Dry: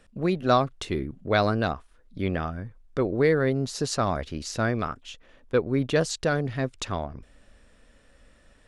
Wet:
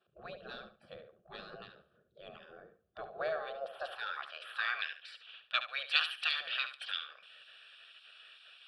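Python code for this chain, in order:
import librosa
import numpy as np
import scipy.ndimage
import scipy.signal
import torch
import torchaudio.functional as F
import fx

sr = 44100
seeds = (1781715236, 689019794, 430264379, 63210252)

p1 = fx.spec_gate(x, sr, threshold_db=-20, keep='weak')
p2 = fx.peak_eq(p1, sr, hz=3000.0, db=5.0, octaves=2.1)
p3 = fx.fixed_phaser(p2, sr, hz=1400.0, stages=8)
p4 = 10.0 ** (-35.0 / 20.0) * np.tanh(p3 / 10.0 ** (-35.0 / 20.0))
p5 = p3 + (p4 * librosa.db_to_amplitude(-7.5))
p6 = fx.filter_sweep_bandpass(p5, sr, from_hz=240.0, to_hz=2600.0, start_s=2.65, end_s=5.08, q=1.7)
p7 = p6 + fx.echo_feedback(p6, sr, ms=71, feedback_pct=20, wet_db=-11, dry=0)
y = p7 * librosa.db_to_amplitude(9.0)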